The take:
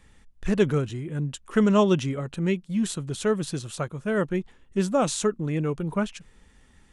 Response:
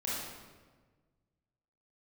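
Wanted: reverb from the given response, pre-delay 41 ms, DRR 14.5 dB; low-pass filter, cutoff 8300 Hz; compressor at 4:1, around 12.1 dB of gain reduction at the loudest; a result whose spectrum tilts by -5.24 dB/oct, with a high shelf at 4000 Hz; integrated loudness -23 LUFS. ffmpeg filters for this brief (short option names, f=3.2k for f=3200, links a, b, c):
-filter_complex "[0:a]lowpass=8.3k,highshelf=f=4k:g=4.5,acompressor=threshold=-30dB:ratio=4,asplit=2[a][b];[1:a]atrim=start_sample=2205,adelay=41[c];[b][c]afir=irnorm=-1:irlink=0,volume=-19dB[d];[a][d]amix=inputs=2:normalize=0,volume=10.5dB"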